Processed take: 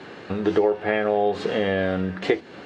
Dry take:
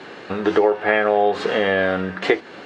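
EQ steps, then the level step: dynamic EQ 1300 Hz, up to -5 dB, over -34 dBFS, Q 0.9; low shelf 190 Hz +10 dB; -4.0 dB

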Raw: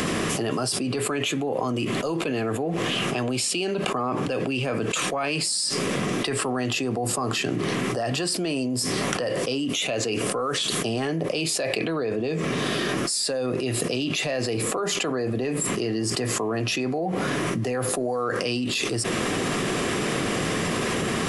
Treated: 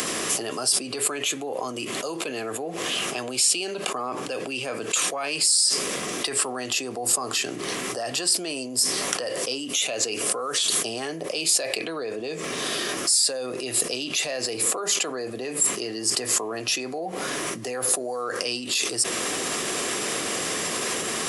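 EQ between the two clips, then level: tone controls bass -13 dB, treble +10 dB; -2.5 dB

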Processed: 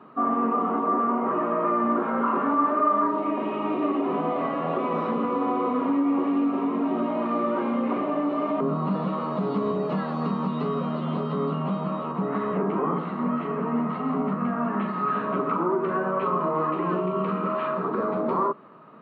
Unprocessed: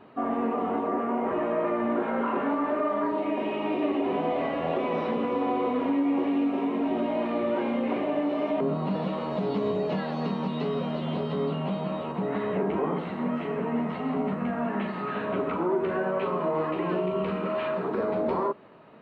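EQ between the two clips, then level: HPF 140 Hz 24 dB/oct; low shelf 390 Hz +10.5 dB; bell 1200 Hz +15 dB 0.53 oct; -5.0 dB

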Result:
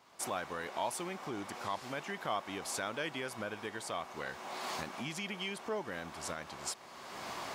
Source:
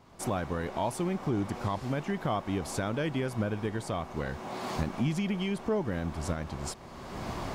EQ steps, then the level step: LPF 1200 Hz 6 dB/oct; differentiator; +16.5 dB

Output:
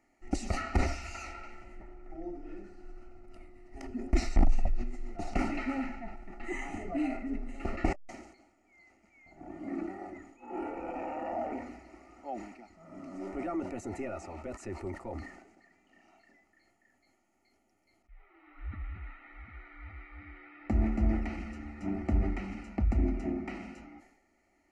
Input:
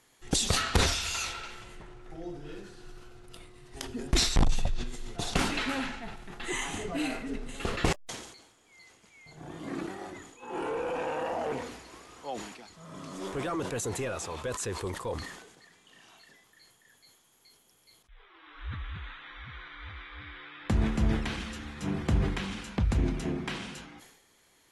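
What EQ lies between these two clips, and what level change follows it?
Butterworth band-stop 1600 Hz, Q 4.1; tape spacing loss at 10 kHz 23 dB; fixed phaser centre 700 Hz, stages 8; +2.0 dB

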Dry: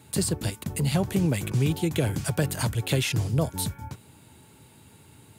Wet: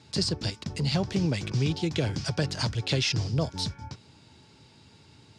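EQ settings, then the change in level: ladder low-pass 5700 Hz, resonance 65%; +8.5 dB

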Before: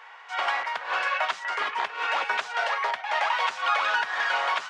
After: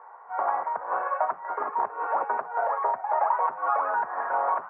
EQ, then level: inverse Chebyshev low-pass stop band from 3600 Hz, stop band 60 dB; +4.5 dB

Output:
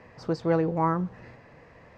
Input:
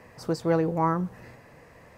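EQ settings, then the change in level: air absorption 180 m; high shelf 4000 Hz +6 dB; 0.0 dB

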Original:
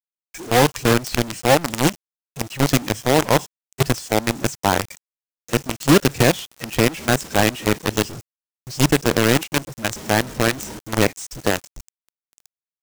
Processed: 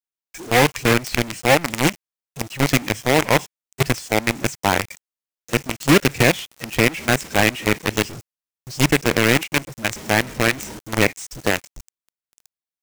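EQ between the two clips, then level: dynamic EQ 2200 Hz, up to +8 dB, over -38 dBFS, Q 2.2; -1.0 dB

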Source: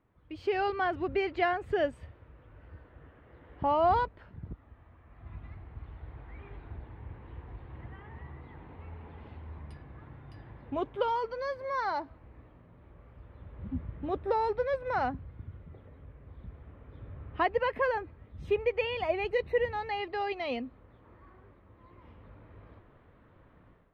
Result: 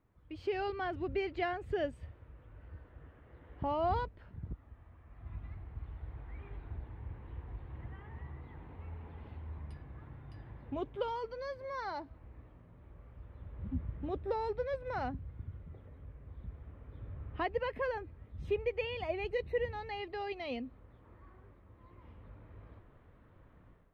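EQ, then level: dynamic EQ 1100 Hz, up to -5 dB, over -43 dBFS, Q 0.71; low shelf 110 Hz +6.5 dB; -4.0 dB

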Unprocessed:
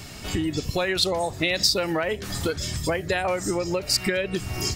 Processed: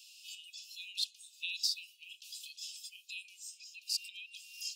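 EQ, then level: Chebyshev high-pass 2500 Hz, order 10; tilt -1.5 dB/oct; -8.0 dB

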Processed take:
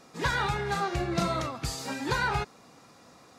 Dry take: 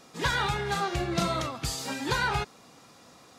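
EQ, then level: bell 3200 Hz -4.5 dB 0.4 oct; high shelf 5200 Hz -4.5 dB; 0.0 dB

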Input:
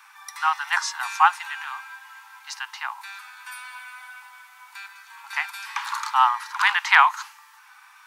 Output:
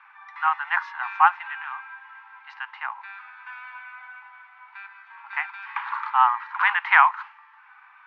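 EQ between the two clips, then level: LPF 2400 Hz 24 dB/oct; 0.0 dB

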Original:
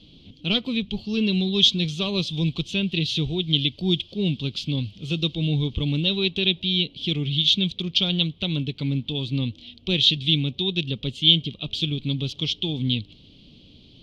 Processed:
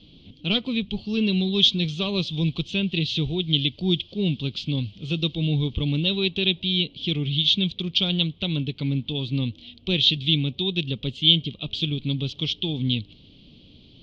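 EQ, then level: LPF 4900 Hz 12 dB/oct; 0.0 dB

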